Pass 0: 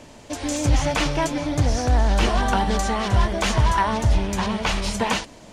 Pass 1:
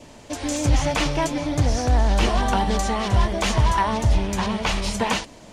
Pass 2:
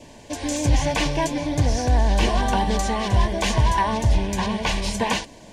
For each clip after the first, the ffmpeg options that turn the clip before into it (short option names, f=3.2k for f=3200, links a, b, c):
-af "adynamicequalizer=threshold=0.00891:dfrequency=1500:dqfactor=3.5:tfrequency=1500:tqfactor=3.5:attack=5:release=100:ratio=0.375:range=2:mode=cutabove:tftype=bell"
-af "asuperstop=centerf=1300:order=12:qfactor=5"